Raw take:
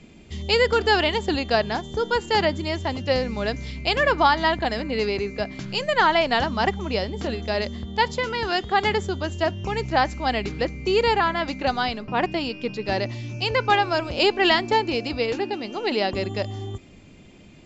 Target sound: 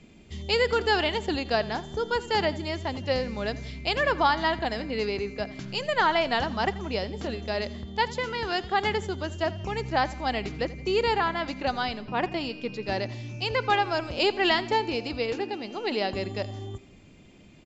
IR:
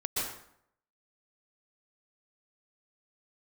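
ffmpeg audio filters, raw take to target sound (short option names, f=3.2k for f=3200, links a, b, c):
-af "aecho=1:1:84|168|252|336:0.119|0.0559|0.0263|0.0123,volume=-4.5dB"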